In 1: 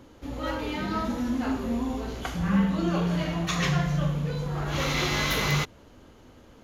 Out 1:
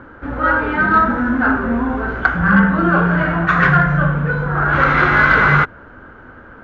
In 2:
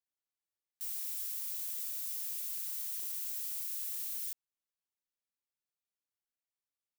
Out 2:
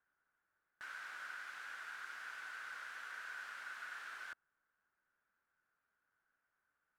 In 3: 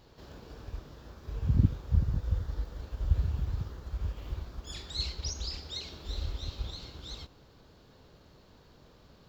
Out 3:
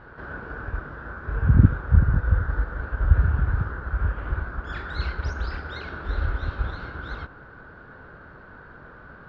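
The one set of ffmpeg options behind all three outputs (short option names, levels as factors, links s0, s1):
-af "lowpass=f=1500:t=q:w=8.2,acontrast=51,volume=1.5"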